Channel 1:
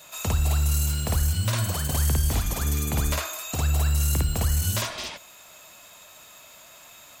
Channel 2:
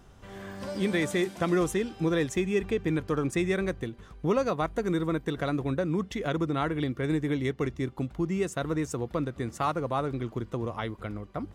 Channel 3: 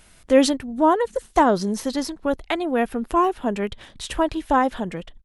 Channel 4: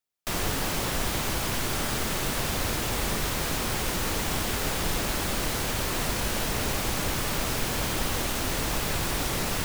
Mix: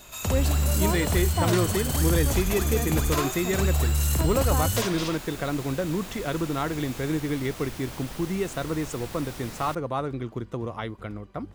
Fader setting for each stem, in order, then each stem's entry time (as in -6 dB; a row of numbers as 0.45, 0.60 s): -1.0, +0.5, -13.5, -12.0 dB; 0.00, 0.00, 0.00, 0.10 s